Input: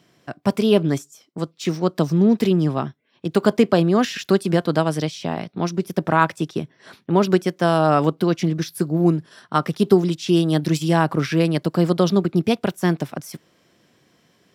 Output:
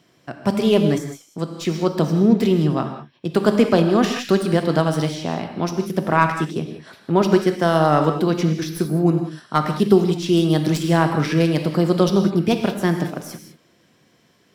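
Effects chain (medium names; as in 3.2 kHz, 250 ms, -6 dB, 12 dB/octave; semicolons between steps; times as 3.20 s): tracing distortion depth 0.028 ms; gated-style reverb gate 220 ms flat, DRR 5.5 dB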